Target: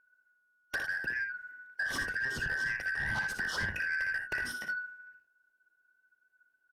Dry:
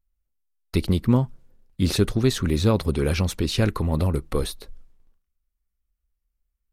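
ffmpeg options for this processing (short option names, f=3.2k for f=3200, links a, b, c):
-filter_complex "[0:a]afftfilt=real='real(if(lt(b,272),68*(eq(floor(b/68),0)*1+eq(floor(b/68),1)*0+eq(floor(b/68),2)*3+eq(floor(b/68),3)*2)+mod(b,68),b),0)':imag='imag(if(lt(b,272),68*(eq(floor(b/68),0)*1+eq(floor(b/68),1)*0+eq(floor(b/68),2)*3+eq(floor(b/68),3)*2)+mod(b,68),b),0)':win_size=2048:overlap=0.75,tiltshelf=f=1.2k:g=8,acompressor=threshold=-23dB:ratio=3,bandreject=f=92.75:t=h:w=4,bandreject=f=185.5:t=h:w=4,bandreject=f=278.25:t=h:w=4,bandreject=f=371:t=h:w=4,acrossover=split=160[a][b];[b]acompressor=threshold=-33dB:ratio=10[c];[a][c]amix=inputs=2:normalize=0,lowshelf=f=220:g=-7.5,aecho=1:1:35|59|79:0.141|0.422|0.266,asoftclip=type=tanh:threshold=-29.5dB,volume=3.5dB"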